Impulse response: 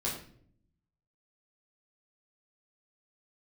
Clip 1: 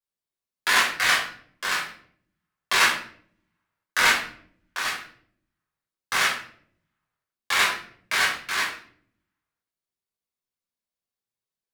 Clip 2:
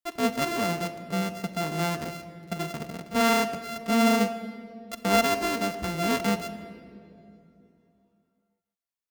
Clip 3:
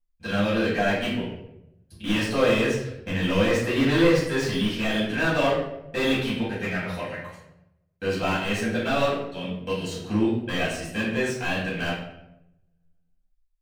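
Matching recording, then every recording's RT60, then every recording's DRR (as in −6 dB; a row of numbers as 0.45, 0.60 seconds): 1; non-exponential decay, 2.9 s, 0.90 s; −6.5, 8.5, −10.0 decibels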